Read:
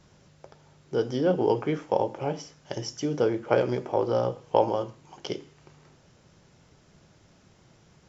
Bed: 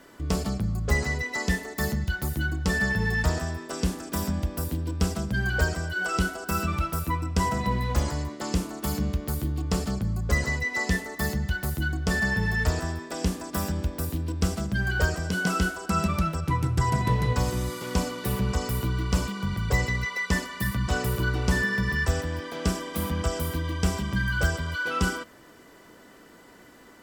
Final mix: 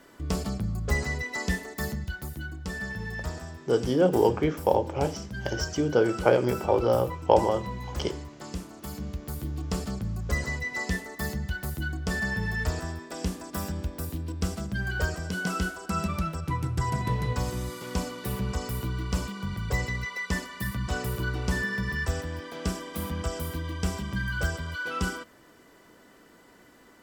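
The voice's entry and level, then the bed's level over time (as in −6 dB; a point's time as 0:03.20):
2.75 s, +2.0 dB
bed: 0:01.64 −2.5 dB
0:02.48 −9.5 dB
0:08.89 −9.5 dB
0:09.58 −4 dB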